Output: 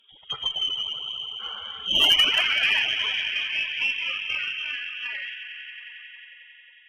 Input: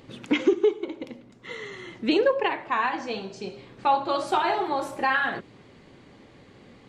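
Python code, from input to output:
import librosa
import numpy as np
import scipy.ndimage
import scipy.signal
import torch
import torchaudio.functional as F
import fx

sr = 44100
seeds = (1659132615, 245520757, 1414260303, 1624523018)

p1 = fx.doppler_pass(x, sr, speed_mps=13, closest_m=8.7, pass_at_s=2.49)
p2 = scipy.signal.sosfilt(scipy.signal.butter(2, 100.0, 'highpass', fs=sr, output='sos'), p1)
p3 = fx.low_shelf(p2, sr, hz=280.0, db=6.0)
p4 = p3 + fx.echo_swell(p3, sr, ms=90, loudest=5, wet_db=-14.0, dry=0)
p5 = fx.echo_pitch(p4, sr, ms=151, semitones=2, count=3, db_per_echo=-3.0)
p6 = fx.spec_topn(p5, sr, count=64)
p7 = fx.low_shelf(p6, sr, hz=130.0, db=-9.0)
p8 = fx.freq_invert(p7, sr, carrier_hz=3500)
y = fx.cheby_harmonics(p8, sr, harmonics=(2, 4, 5, 7), levels_db=(-17, -21, -25, -30), full_scale_db=-9.0)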